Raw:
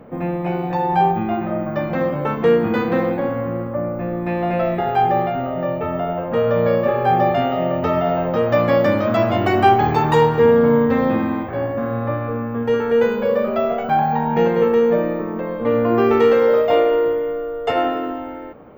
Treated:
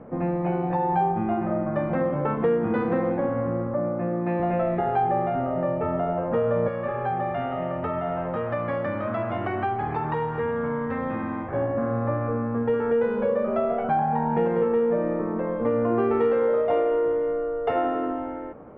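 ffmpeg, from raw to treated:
-filter_complex "[0:a]asettb=1/sr,asplit=3[s0][s1][s2];[s0]atrim=end=3.744[s3];[s1]atrim=start=3.74:end=4.4,asetpts=PTS-STARTPTS,afade=t=in:d=0.004:c=qsin,afade=t=out:st=0.656:d=0.004:c=qsin,highpass=f=120:w=0.5412,highpass=f=120:w=1.3066[s4];[s2]atrim=start=4.396[s5];[s3][s4]acrossfade=d=0.004:c1=hsin:c2=qsin[s6];[s6][s5]acrossfade=d=0.004:c1=qsin:c2=hsin,asettb=1/sr,asplit=3[s7][s8][s9];[s7]atrim=end=6.684[s10];[s8]atrim=start=6.68:end=11.53,asetpts=PTS-STARTPTS,afade=t=in:d=0.004:c=qsin,afade=t=out:st=4.846:d=0.004:c=qsin,acrossover=split=140|1000|3600[s11][s12][s13][s14];[s11]acompressor=threshold=0.0141:ratio=3[s15];[s12]acompressor=threshold=0.0316:ratio=3[s16];[s13]acompressor=threshold=0.0355:ratio=3[s17];[s14]acompressor=threshold=0.00158:ratio=3[s18];[s15][s16][s17][s18]amix=inputs=4:normalize=0[s19];[s9]atrim=start=11.526[s20];[s10][s19]acrossfade=d=0.004:c1=hsin:c2=qsin[s21];[s21][s20]acrossfade=d=0.004:c1=qsin:c2=hsin,lowpass=1700,acompressor=threshold=0.1:ratio=2.5,volume=0.841"

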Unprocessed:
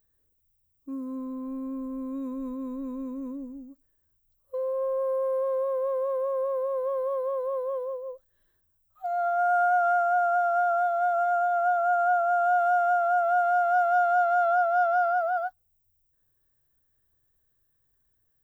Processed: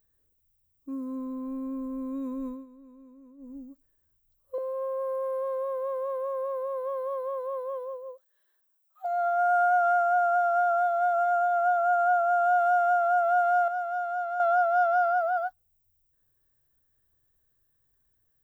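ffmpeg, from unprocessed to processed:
-filter_complex "[0:a]asettb=1/sr,asplit=3[s0][s1][s2];[s0]atrim=end=4.584[s3];[s1]atrim=start=4.58:end=9.05,asetpts=PTS-STARTPTS,afade=t=in:d=0.004:c=qsin,afade=t=out:st=4.466:d=0.004:c=qsin,highpass=570[s4];[s2]atrim=start=9.046[s5];[s3][s4]acrossfade=d=0.004:c1=hsin:c2=qsin[s6];[s6][s5]acrossfade=d=0.004:c1=qsin:c2=hsin,asplit=5[s7][s8][s9][s10][s11];[s7]atrim=end=2.66,asetpts=PTS-STARTPTS,afade=t=out:st=2.46:d=0.2:silence=0.141254[s12];[s8]atrim=start=2.66:end=3.37,asetpts=PTS-STARTPTS,volume=0.141[s13];[s9]atrim=start=3.37:end=13.682,asetpts=PTS-STARTPTS,afade=t=in:d=0.2:silence=0.141254[s14];[s10]atrim=start=13.678:end=14.402,asetpts=PTS-STARTPTS,volume=0.398[s15];[s11]atrim=start=14.398[s16];[s12][s13][s14]concat=n=3:v=0:a=1[s17];[s17][s15]acrossfade=d=0.004:c1=hsin:c2=hsin[s18];[s18][s16]acrossfade=d=0.004:c1=hsin:c2=hsin"

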